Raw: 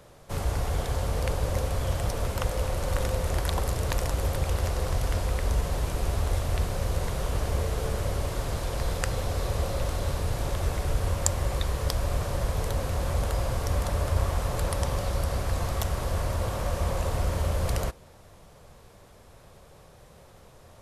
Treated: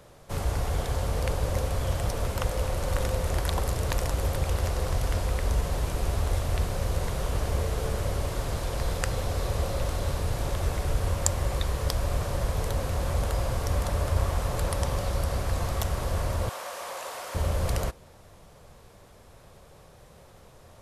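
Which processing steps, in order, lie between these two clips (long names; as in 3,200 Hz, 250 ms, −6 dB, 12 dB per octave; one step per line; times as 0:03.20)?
0:16.49–0:17.35: high-pass filter 730 Hz 12 dB per octave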